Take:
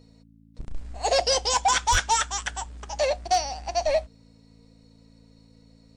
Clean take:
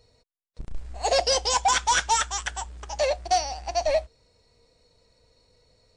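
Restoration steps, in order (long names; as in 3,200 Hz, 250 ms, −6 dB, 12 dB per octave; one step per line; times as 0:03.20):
clipped peaks rebuilt −14 dBFS
hum removal 55.3 Hz, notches 5
high-pass at the plosives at 0:01.91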